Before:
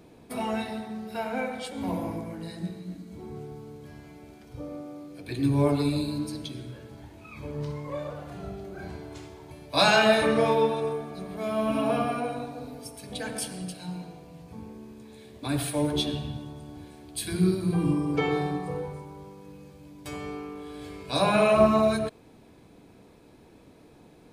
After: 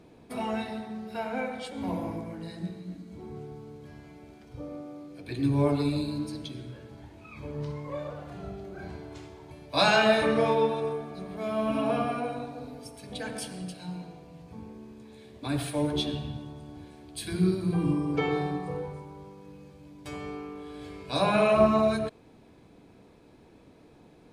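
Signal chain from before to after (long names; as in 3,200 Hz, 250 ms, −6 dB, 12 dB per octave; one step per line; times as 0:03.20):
high-shelf EQ 10,000 Hz −11 dB
level −1.5 dB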